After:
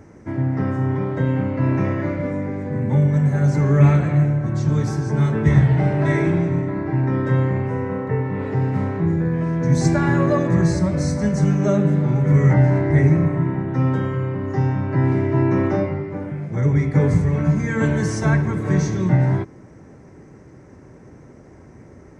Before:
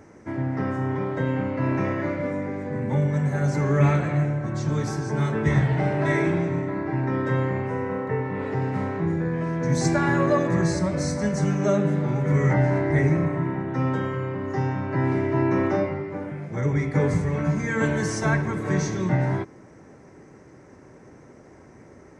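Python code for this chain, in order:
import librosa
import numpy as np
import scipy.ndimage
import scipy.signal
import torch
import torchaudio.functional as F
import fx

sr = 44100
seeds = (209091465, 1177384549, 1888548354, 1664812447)

y = fx.low_shelf(x, sr, hz=220.0, db=9.5)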